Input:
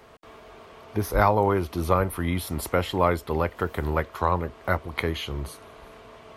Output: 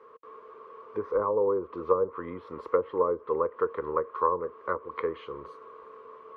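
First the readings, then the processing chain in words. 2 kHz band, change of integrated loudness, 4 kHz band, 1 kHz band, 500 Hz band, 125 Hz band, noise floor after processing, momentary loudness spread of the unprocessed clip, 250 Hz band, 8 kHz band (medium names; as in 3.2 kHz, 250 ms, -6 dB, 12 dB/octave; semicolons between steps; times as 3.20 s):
-13.0 dB, -3.5 dB, under -20 dB, -5.0 dB, -0.5 dB, -21.0 dB, -51 dBFS, 10 LU, -10.0 dB, under -35 dB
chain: low-pass that closes with the level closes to 650 Hz, closed at -18 dBFS; two resonant band-passes 720 Hz, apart 1.2 oct; trim +6 dB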